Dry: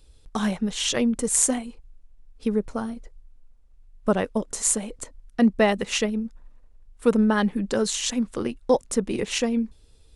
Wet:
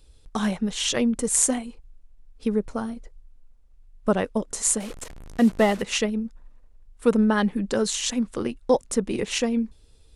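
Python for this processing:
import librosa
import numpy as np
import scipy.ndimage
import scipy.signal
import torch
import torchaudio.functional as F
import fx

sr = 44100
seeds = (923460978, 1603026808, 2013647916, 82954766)

y = fx.delta_mod(x, sr, bps=64000, step_db=-34.0, at=(4.8, 5.82))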